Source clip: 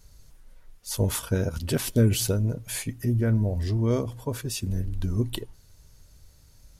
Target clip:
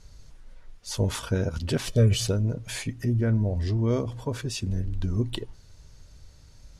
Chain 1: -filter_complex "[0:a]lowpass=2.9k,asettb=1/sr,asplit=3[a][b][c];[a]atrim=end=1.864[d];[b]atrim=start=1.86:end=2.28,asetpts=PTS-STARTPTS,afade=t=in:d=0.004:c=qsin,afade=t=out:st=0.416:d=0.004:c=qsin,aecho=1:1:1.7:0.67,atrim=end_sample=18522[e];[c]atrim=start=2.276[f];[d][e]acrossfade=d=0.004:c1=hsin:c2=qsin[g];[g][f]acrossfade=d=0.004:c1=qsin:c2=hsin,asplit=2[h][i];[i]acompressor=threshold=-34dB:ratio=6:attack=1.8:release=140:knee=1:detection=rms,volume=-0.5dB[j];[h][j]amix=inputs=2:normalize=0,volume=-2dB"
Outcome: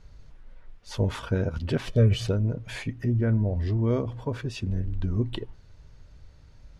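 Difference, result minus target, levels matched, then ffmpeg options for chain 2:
8000 Hz band -11.5 dB
-filter_complex "[0:a]lowpass=6.4k,asettb=1/sr,asplit=3[a][b][c];[a]atrim=end=1.864[d];[b]atrim=start=1.86:end=2.28,asetpts=PTS-STARTPTS,afade=t=in:d=0.004:c=qsin,afade=t=out:st=0.416:d=0.004:c=qsin,aecho=1:1:1.7:0.67,atrim=end_sample=18522[e];[c]atrim=start=2.276[f];[d][e]acrossfade=d=0.004:c1=hsin:c2=qsin[g];[g][f]acrossfade=d=0.004:c1=qsin:c2=hsin,asplit=2[h][i];[i]acompressor=threshold=-34dB:ratio=6:attack=1.8:release=140:knee=1:detection=rms,volume=-0.5dB[j];[h][j]amix=inputs=2:normalize=0,volume=-2dB"

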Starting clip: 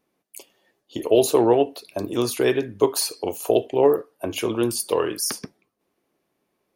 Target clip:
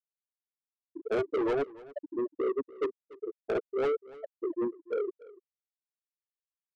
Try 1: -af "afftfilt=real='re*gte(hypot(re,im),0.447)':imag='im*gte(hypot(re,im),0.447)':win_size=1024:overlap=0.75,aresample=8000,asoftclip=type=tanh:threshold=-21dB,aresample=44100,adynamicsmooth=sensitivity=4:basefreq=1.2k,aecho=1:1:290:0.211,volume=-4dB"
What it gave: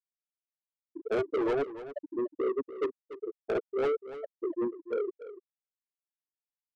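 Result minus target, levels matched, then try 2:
echo-to-direct +6.5 dB
-af "afftfilt=real='re*gte(hypot(re,im),0.447)':imag='im*gte(hypot(re,im),0.447)':win_size=1024:overlap=0.75,aresample=8000,asoftclip=type=tanh:threshold=-21dB,aresample=44100,adynamicsmooth=sensitivity=4:basefreq=1.2k,aecho=1:1:290:0.1,volume=-4dB"

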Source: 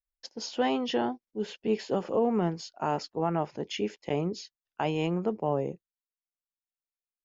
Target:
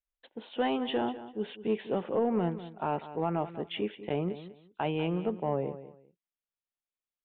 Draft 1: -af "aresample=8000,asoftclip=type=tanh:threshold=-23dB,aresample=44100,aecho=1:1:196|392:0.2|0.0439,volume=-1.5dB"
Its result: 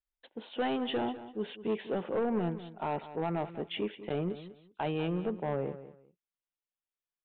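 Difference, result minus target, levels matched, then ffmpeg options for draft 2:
soft clip: distortion +12 dB
-af "aresample=8000,asoftclip=type=tanh:threshold=-14.5dB,aresample=44100,aecho=1:1:196|392:0.2|0.0439,volume=-1.5dB"

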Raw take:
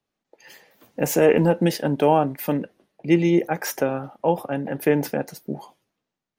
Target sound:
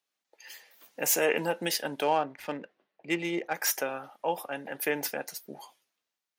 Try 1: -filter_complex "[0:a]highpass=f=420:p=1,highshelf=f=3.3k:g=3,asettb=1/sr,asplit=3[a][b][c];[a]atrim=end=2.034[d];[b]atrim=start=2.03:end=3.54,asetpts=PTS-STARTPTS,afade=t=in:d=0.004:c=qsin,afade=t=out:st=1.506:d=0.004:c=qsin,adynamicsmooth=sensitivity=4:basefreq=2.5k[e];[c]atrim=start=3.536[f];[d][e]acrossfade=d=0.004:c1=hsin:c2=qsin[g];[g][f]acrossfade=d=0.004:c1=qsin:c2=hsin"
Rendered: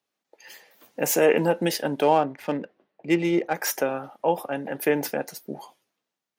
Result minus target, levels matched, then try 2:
2000 Hz band -3.5 dB
-filter_complex "[0:a]highpass=f=1.6k:p=1,highshelf=f=3.3k:g=3,asettb=1/sr,asplit=3[a][b][c];[a]atrim=end=2.034[d];[b]atrim=start=2.03:end=3.54,asetpts=PTS-STARTPTS,afade=t=in:d=0.004:c=qsin,afade=t=out:st=1.506:d=0.004:c=qsin,adynamicsmooth=sensitivity=4:basefreq=2.5k[e];[c]atrim=start=3.536[f];[d][e]acrossfade=d=0.004:c1=hsin:c2=qsin[g];[g][f]acrossfade=d=0.004:c1=qsin:c2=hsin"

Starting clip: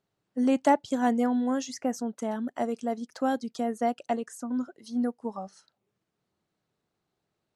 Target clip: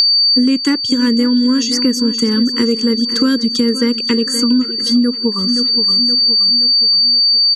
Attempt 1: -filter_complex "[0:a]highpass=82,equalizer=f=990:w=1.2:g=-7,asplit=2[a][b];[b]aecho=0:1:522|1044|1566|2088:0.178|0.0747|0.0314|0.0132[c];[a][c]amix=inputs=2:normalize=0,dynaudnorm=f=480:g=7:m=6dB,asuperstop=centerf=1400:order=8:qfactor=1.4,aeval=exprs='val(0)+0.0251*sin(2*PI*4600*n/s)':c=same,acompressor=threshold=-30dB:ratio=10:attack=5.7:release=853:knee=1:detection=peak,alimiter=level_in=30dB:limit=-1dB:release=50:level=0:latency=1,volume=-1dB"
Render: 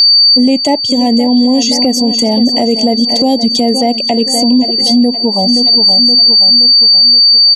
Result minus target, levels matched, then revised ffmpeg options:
1000 Hz band +9.5 dB; compressor: peak gain reduction -6.5 dB
-filter_complex "[0:a]highpass=82,equalizer=f=990:w=1.2:g=-7,asplit=2[a][b];[b]aecho=0:1:522|1044|1566|2088:0.178|0.0747|0.0314|0.0132[c];[a][c]amix=inputs=2:normalize=0,dynaudnorm=f=480:g=7:m=6dB,asuperstop=centerf=690:order=8:qfactor=1.4,aeval=exprs='val(0)+0.0251*sin(2*PI*4600*n/s)':c=same,acompressor=threshold=-38.5dB:ratio=10:attack=5.7:release=853:knee=1:detection=peak,alimiter=level_in=30dB:limit=-1dB:release=50:level=0:latency=1,volume=-1dB"

